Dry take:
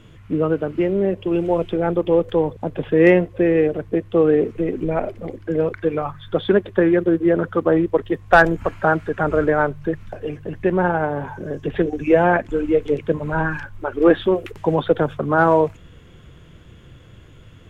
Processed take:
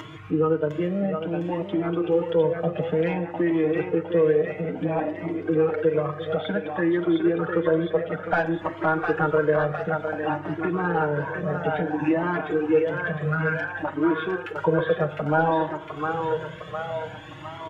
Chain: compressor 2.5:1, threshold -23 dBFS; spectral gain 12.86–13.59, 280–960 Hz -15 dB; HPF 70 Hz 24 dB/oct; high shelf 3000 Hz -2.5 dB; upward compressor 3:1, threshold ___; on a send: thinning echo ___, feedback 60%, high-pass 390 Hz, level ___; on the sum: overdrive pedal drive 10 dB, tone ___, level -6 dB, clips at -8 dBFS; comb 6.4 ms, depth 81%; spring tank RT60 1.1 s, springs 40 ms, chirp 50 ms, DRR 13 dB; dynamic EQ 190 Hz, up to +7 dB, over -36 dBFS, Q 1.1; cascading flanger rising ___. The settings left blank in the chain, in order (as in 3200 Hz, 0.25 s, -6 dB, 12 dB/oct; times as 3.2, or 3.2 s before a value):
-29 dBFS, 0.707 s, -4 dB, 2400 Hz, 0.57 Hz